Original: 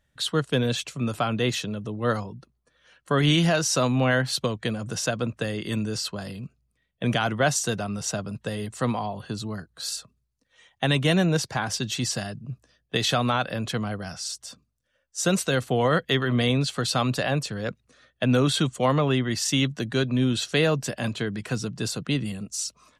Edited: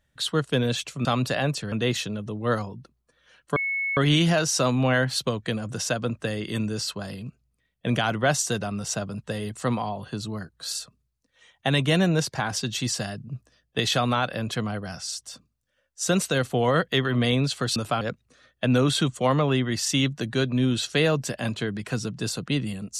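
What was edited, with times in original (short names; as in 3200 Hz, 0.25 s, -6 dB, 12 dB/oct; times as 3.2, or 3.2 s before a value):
1.05–1.3 swap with 16.93–17.6
3.14 add tone 2200 Hz -24 dBFS 0.41 s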